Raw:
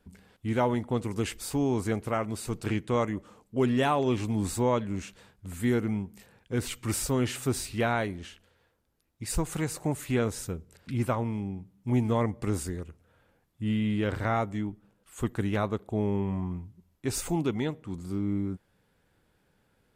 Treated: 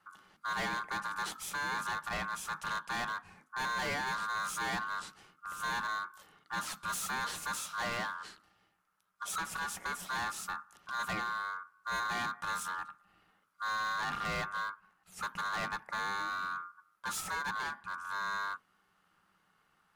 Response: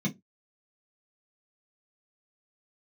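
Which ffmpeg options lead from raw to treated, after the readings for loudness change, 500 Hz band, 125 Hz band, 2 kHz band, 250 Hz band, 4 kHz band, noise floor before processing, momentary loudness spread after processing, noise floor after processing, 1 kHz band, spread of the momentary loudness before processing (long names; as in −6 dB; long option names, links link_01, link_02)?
−6.5 dB, −17.5 dB, −21.0 dB, +4.5 dB, −21.0 dB, +0.5 dB, −70 dBFS, 8 LU, −74 dBFS, +0.5 dB, 11 LU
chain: -filter_complex "[0:a]aeval=exprs='val(0)*sin(2*PI*1300*n/s)':channel_layout=same,asoftclip=type=hard:threshold=-32dB,asplit=2[link_01][link_02];[1:a]atrim=start_sample=2205[link_03];[link_02][link_03]afir=irnorm=-1:irlink=0,volume=-17dB[link_04];[link_01][link_04]amix=inputs=2:normalize=0"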